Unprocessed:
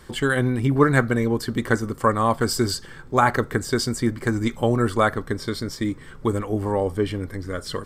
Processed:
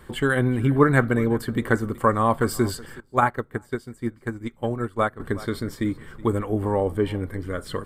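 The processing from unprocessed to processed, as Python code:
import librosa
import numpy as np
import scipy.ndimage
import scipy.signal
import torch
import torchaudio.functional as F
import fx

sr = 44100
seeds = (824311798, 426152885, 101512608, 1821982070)

y = fx.peak_eq(x, sr, hz=5500.0, db=-12.0, octaves=0.92)
y = y + 10.0 ** (-20.5 / 20.0) * np.pad(y, (int(372 * sr / 1000.0), 0))[:len(y)]
y = fx.upward_expand(y, sr, threshold_db=-27.0, expansion=2.5, at=(3.0, 5.2))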